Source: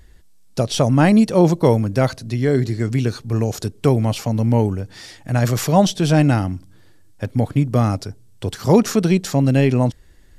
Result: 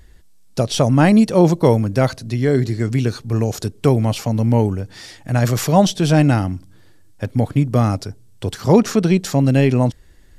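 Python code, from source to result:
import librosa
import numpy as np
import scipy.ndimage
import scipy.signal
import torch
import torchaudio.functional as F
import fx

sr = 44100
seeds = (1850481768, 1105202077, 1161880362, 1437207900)

y = fx.high_shelf(x, sr, hz=8100.0, db=-7.5, at=(8.6, 9.18))
y = y * 10.0 ** (1.0 / 20.0)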